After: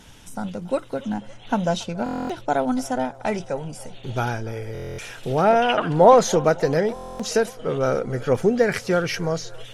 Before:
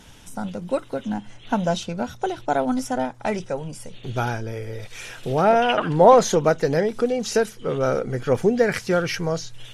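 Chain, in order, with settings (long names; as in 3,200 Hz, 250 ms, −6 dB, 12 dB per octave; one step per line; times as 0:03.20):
delay with a band-pass on its return 280 ms, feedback 70%, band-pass 860 Hz, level −21 dB
buffer that repeats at 0:02.04/0:04.73/0:06.94, samples 1,024, times 10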